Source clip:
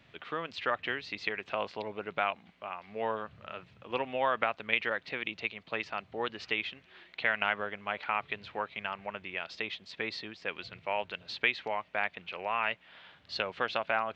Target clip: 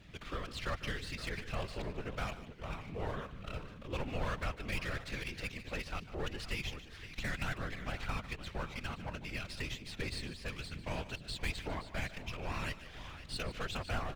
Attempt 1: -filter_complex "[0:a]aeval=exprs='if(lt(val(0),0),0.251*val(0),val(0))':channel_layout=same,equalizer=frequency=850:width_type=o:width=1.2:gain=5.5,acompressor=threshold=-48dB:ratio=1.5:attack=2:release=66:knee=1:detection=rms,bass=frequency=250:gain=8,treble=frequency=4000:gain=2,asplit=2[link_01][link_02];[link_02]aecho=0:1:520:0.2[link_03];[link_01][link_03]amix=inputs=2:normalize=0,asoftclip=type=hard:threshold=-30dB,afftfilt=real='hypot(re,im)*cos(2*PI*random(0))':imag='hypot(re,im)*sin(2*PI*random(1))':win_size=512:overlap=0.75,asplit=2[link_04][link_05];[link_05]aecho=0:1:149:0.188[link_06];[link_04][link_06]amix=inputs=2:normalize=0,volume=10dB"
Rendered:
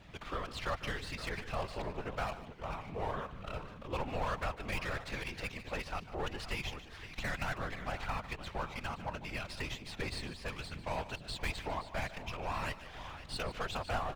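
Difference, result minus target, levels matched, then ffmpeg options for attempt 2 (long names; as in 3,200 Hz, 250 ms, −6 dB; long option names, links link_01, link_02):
1,000 Hz band +4.0 dB
-filter_complex "[0:a]aeval=exprs='if(lt(val(0),0),0.251*val(0),val(0))':channel_layout=same,equalizer=frequency=850:width_type=o:width=1.2:gain=-3.5,acompressor=threshold=-48dB:ratio=1.5:attack=2:release=66:knee=1:detection=rms,bass=frequency=250:gain=8,treble=frequency=4000:gain=2,asplit=2[link_01][link_02];[link_02]aecho=0:1:520:0.2[link_03];[link_01][link_03]amix=inputs=2:normalize=0,asoftclip=type=hard:threshold=-30dB,afftfilt=real='hypot(re,im)*cos(2*PI*random(0))':imag='hypot(re,im)*sin(2*PI*random(1))':win_size=512:overlap=0.75,asplit=2[link_04][link_05];[link_05]aecho=0:1:149:0.188[link_06];[link_04][link_06]amix=inputs=2:normalize=0,volume=10dB"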